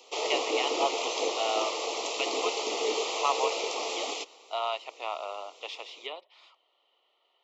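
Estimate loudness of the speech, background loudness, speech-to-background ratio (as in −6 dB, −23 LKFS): −34.5 LKFS, −30.5 LKFS, −4.0 dB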